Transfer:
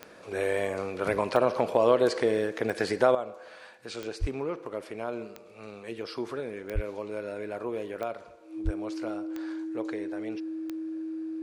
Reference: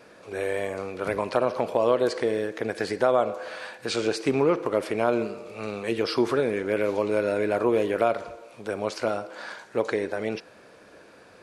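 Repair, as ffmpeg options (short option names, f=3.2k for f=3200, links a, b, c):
-filter_complex "[0:a]adeclick=t=4,bandreject=f=320:w=30,asplit=3[a][b][c];[a]afade=t=out:st=4.2:d=0.02[d];[b]highpass=f=140:w=0.5412,highpass=f=140:w=1.3066,afade=t=in:st=4.2:d=0.02,afade=t=out:st=4.32:d=0.02[e];[c]afade=t=in:st=4.32:d=0.02[f];[d][e][f]amix=inputs=3:normalize=0,asplit=3[g][h][i];[g]afade=t=out:st=6.74:d=0.02[j];[h]highpass=f=140:w=0.5412,highpass=f=140:w=1.3066,afade=t=in:st=6.74:d=0.02,afade=t=out:st=6.86:d=0.02[k];[i]afade=t=in:st=6.86:d=0.02[l];[j][k][l]amix=inputs=3:normalize=0,asplit=3[m][n][o];[m]afade=t=out:st=8.64:d=0.02[p];[n]highpass=f=140:w=0.5412,highpass=f=140:w=1.3066,afade=t=in:st=8.64:d=0.02,afade=t=out:st=8.76:d=0.02[q];[o]afade=t=in:st=8.76:d=0.02[r];[p][q][r]amix=inputs=3:normalize=0,asetnsamples=n=441:p=0,asendcmd='3.15 volume volume 11dB',volume=0dB"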